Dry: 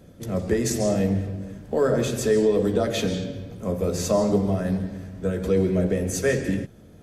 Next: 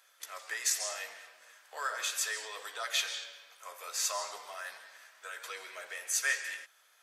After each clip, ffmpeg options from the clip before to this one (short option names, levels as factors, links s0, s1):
-af "highpass=f=1100:w=0.5412,highpass=f=1100:w=1.3066"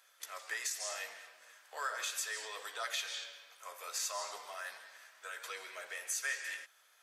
-af "alimiter=level_in=1.06:limit=0.0631:level=0:latency=1:release=216,volume=0.944,volume=0.841"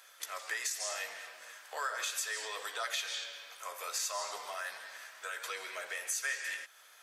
-af "acompressor=threshold=0.00224:ratio=1.5,volume=2.66"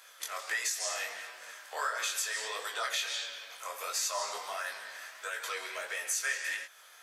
-af "flanger=delay=18:depth=6.5:speed=1.5,volume=2"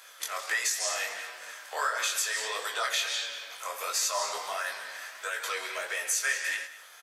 -af "aecho=1:1:199:0.141,volume=1.58"